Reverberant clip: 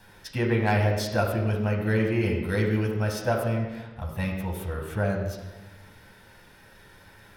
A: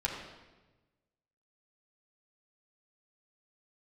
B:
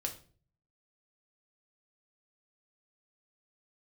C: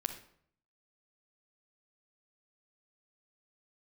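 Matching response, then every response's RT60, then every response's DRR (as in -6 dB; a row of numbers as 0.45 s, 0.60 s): A; 1.2 s, 0.45 s, 0.60 s; -3.5 dB, 2.0 dB, 2.0 dB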